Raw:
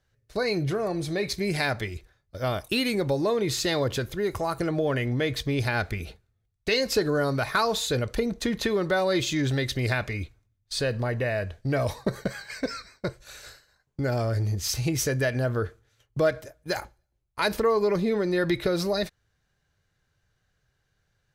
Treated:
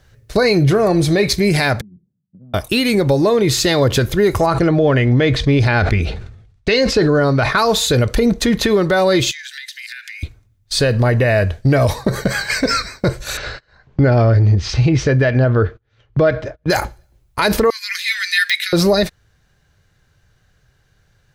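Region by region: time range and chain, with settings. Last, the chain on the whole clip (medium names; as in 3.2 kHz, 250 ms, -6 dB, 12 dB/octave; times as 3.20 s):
1.81–2.54 s: Butterworth band-pass 190 Hz, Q 2.9 + compression, threshold -53 dBFS
4.46–7.58 s: distance through air 93 m + decay stretcher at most 70 dB/s
9.31–10.23 s: steep high-pass 1.5 kHz 96 dB/octave + compression 16:1, threshold -39 dBFS
13.37–16.70 s: Bessel low-pass 3.1 kHz, order 4 + gate -56 dBFS, range -31 dB + upward compressor, threshold -43 dBFS
17.70–18.73 s: steep high-pass 1.7 kHz 48 dB/octave + de-esser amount 80%
whole clip: bass shelf 210 Hz +3.5 dB; gain riding 0.5 s; loudness maximiser +17.5 dB; trim -4.5 dB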